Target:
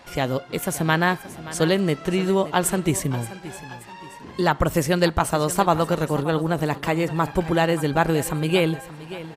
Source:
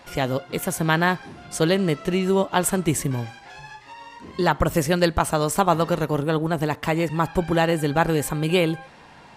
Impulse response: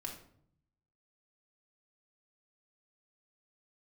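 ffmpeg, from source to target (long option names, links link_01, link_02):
-af "aecho=1:1:576|1152|1728:0.168|0.0638|0.0242"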